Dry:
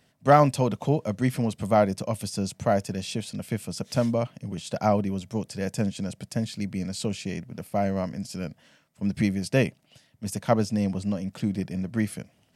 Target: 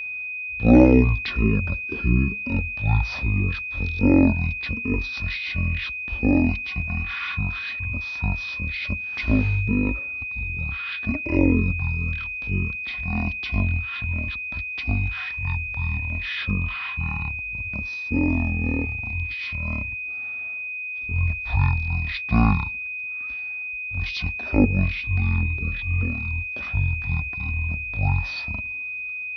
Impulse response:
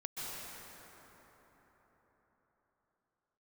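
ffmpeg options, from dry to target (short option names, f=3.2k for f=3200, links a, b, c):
-af "asetrate=18846,aresample=44100,aeval=exprs='val(0)+0.0282*sin(2*PI*2500*n/s)':c=same,volume=2.5dB"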